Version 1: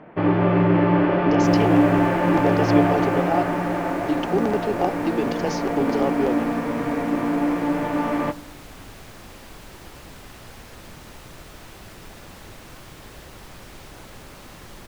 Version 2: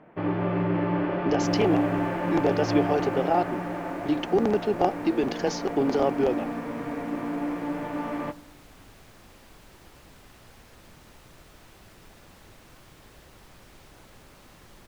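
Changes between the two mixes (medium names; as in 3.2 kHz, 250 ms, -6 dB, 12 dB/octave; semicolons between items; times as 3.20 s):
first sound -8.0 dB; second sound -9.5 dB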